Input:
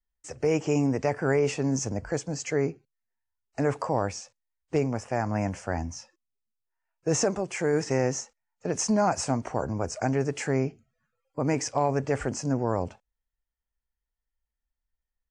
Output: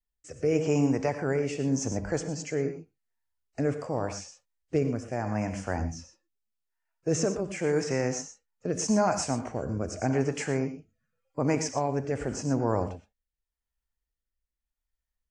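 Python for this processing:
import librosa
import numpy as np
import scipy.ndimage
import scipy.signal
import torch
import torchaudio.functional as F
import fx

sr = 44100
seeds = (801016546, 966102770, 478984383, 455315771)

y = fx.rev_gated(x, sr, seeds[0], gate_ms=140, shape='rising', drr_db=8.5)
y = fx.rotary(y, sr, hz=0.85)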